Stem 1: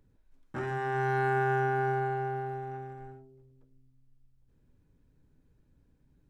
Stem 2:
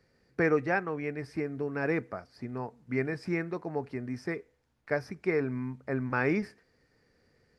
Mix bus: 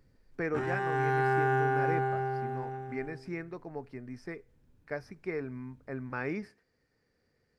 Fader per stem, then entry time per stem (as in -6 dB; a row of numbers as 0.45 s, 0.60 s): +0.5 dB, -7.0 dB; 0.00 s, 0.00 s